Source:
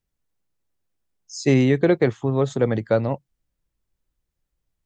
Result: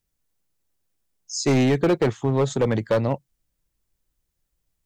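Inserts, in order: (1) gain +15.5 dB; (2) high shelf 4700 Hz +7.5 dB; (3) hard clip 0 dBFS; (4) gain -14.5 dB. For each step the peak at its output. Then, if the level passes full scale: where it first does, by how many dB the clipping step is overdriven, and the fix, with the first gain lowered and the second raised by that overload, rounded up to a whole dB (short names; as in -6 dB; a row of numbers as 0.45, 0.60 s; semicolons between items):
+9.5, +10.0, 0.0, -14.5 dBFS; step 1, 10.0 dB; step 1 +5.5 dB, step 4 -4.5 dB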